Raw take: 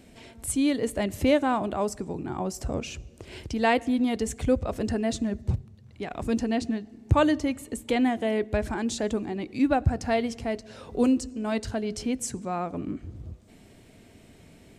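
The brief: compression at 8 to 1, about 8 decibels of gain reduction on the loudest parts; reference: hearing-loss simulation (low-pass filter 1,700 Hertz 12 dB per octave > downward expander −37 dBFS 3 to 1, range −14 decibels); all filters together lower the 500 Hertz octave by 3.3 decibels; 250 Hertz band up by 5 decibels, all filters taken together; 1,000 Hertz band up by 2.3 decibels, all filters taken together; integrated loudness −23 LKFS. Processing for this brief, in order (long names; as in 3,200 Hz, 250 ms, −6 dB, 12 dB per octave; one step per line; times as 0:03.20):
parametric band 250 Hz +7 dB
parametric band 500 Hz −8 dB
parametric band 1,000 Hz +6.5 dB
downward compressor 8 to 1, threshold −21 dBFS
low-pass filter 1,700 Hz 12 dB per octave
downward expander −37 dBFS 3 to 1, range −14 dB
level +5.5 dB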